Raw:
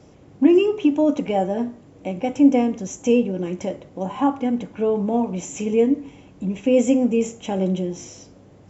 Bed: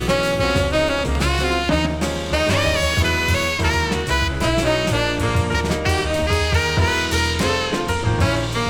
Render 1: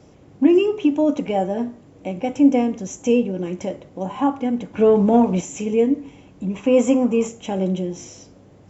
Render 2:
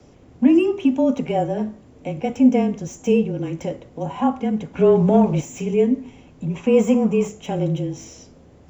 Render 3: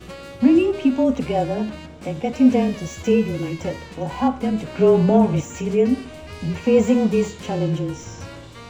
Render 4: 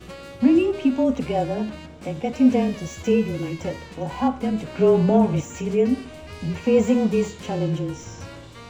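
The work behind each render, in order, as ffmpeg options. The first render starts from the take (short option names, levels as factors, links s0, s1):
-filter_complex "[0:a]asplit=3[s0][s1][s2];[s0]afade=t=out:st=4.73:d=0.02[s3];[s1]acontrast=75,afade=t=in:st=4.73:d=0.02,afade=t=out:st=5.4:d=0.02[s4];[s2]afade=t=in:st=5.4:d=0.02[s5];[s3][s4][s5]amix=inputs=3:normalize=0,asettb=1/sr,asplit=3[s6][s7][s8];[s6]atrim=end=6.544[s9];[s7]atrim=start=6.54:end=7.28,asetpts=PTS-STARTPTS,afade=t=in:d=0.004:c=qsin,afade=t=out:st=0.736:d=0.004:c=qsin,equalizer=f=1100:w=1.9:g=14[s10];[s8]atrim=start=7.276[s11];[s9][s10]acrossfade=d=0.004:c1=hsin:c2=qsin[s12];[s12][s11]acrossfade=d=0.004:c1=qsin:c2=hsin"
-filter_complex "[0:a]acrossover=split=260|770|2800[s0][s1][s2][s3];[s3]asoftclip=type=tanh:threshold=0.0168[s4];[s0][s1][s2][s4]amix=inputs=4:normalize=0,afreqshift=-26"
-filter_complex "[1:a]volume=0.119[s0];[0:a][s0]amix=inputs=2:normalize=0"
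-af "volume=0.794"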